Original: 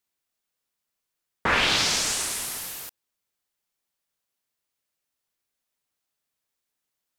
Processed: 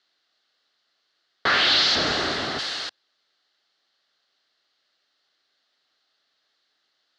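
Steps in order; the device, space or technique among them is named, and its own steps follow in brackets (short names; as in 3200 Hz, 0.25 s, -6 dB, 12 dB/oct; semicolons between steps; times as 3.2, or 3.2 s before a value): 1.95–2.59 tilt -4.5 dB/oct; overdrive pedal into a guitar cabinet (overdrive pedal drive 27 dB, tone 6900 Hz, clips at -9 dBFS; speaker cabinet 96–4500 Hz, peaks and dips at 120 Hz -5 dB, 200 Hz -6 dB, 490 Hz -4 dB, 960 Hz -10 dB, 2400 Hz -10 dB, 4300 Hz +6 dB); gain -2 dB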